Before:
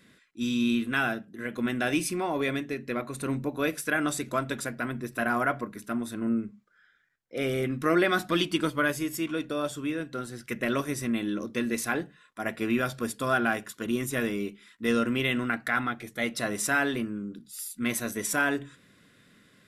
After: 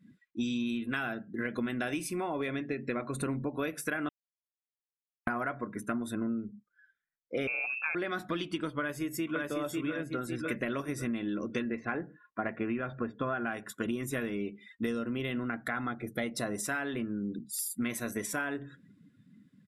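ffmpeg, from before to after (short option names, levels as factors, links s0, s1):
-filter_complex "[0:a]asettb=1/sr,asplit=3[s0][s1][s2];[s0]atrim=end=0.664[s3];[s1]atrim=start=0.66:end=2.48,asetpts=PTS-STARTPTS,afade=t=in:d=0.004:c=qsin,afade=t=out:st=1.816:d=0.004:c=qsin,highshelf=f=5800:g=4.5[s4];[s2]atrim=start=2.476[s5];[s3][s4]acrossfade=d=0.004:c1=hsin:c2=qsin[s6];[s6][s5]acrossfade=d=0.004:c1=qsin:c2=hsin,asettb=1/sr,asplit=3[s7][s8][s9];[s7]atrim=end=7.474[s10];[s8]atrim=start=7.47:end=7.95,asetpts=PTS-STARTPTS,afade=t=in:d=0.004:c=qsin,afade=t=out:st=0.476:d=0.004:c=qsin,lowpass=f=2400:t=q:w=0.5098,lowpass=f=2400:t=q:w=0.6013,lowpass=f=2400:t=q:w=0.9,lowpass=f=2400:t=q:w=2.563,afreqshift=-2800[s11];[s9]atrim=start=7.946[s12];[s10][s11]acrossfade=d=0.004:c1=hsin:c2=qsin[s13];[s13][s12]acrossfade=d=0.004:c1=qsin:c2=hsin,asplit=2[s14][s15];[s15]afade=t=in:st=8.8:d=0.01,afade=t=out:st=9.47:d=0.01,aecho=0:1:550|1100|1650|2200|2750:0.749894|0.299958|0.119983|0.0479932|0.0191973[s16];[s14][s16]amix=inputs=2:normalize=0,asettb=1/sr,asplit=3[s17][s18][s19];[s17]atrim=end=11.624[s20];[s18]atrim=start=11.62:end=13.47,asetpts=PTS-STARTPTS,afade=t=in:d=0.004:c=qsin,afade=t=out:st=1.846:d=0.004:c=qsin,lowpass=2300[s21];[s19]atrim=start=13.466[s22];[s20][s21]acrossfade=d=0.004:c1=hsin:c2=qsin[s23];[s23][s22]acrossfade=d=0.004:c1=qsin:c2=hsin,asettb=1/sr,asplit=3[s24][s25][s26];[s24]atrim=end=14.864[s27];[s25]atrim=start=14.86:end=16.65,asetpts=PTS-STARTPTS,afade=t=in:d=0.004:c=qsin,afade=t=out:st=1.786:d=0.004:c=qsin,equalizer=f=2300:t=o:w=1.9:g=-5.5[s28];[s26]atrim=start=16.646[s29];[s27][s28]acrossfade=d=0.004:c1=hsin:c2=qsin[s30];[s30][s29]acrossfade=d=0.004:c1=qsin:c2=hsin,asplit=3[s31][s32][s33];[s31]atrim=end=4.09,asetpts=PTS-STARTPTS,afade=t=out:st=4.086:d=0.004:c=hsin[s34];[s32]atrim=start=4.09:end=5.27,asetpts=PTS-STARTPTS,volume=0[s35];[s33]atrim=start=5.27,asetpts=PTS-STARTPTS,afade=t=in:d=0.004:c=hsin[s36];[s34][s35][s36]concat=n=3:v=0:a=1,afftdn=nr=26:nf=-49,acompressor=threshold=0.0141:ratio=12,adynamicequalizer=threshold=0.00141:dfrequency=3200:dqfactor=0.7:tfrequency=3200:tqfactor=0.7:attack=5:release=100:ratio=0.375:range=3:mode=cutabove:tftype=highshelf,volume=2.24"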